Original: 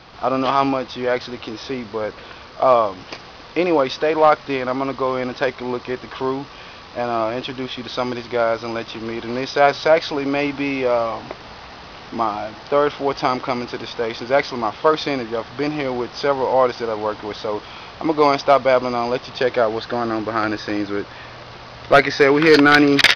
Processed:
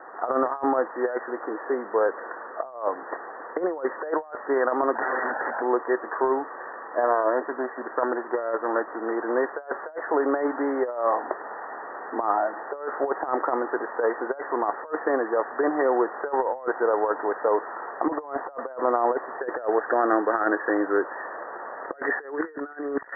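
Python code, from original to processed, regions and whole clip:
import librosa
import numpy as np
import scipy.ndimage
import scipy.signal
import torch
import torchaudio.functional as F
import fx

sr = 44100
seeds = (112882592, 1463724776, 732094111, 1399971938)

y = fx.chain(x, sr, fx.comb(ms=1.3, depth=0.91),
    fx.overflow_wrap(gain_db=20.5),
    fx.env_flatten(amount_pct=50), at=(4.95, 5.62))
y = fx.chain(y, sr, fx.air_absorb(metres=220.0),
    fx.doppler_dist(depth_ms=0.33), at=(7.04, 9.11))
y = scipy.signal.sosfilt(scipy.signal.butter(4, 360.0, 'highpass', fs=sr, output='sos'), y)
y = fx.over_compress(y, sr, threshold_db=-23.0, ratio=-0.5)
y = scipy.signal.sosfilt(scipy.signal.cheby1(10, 1.0, 1900.0, 'lowpass', fs=sr, output='sos'), y)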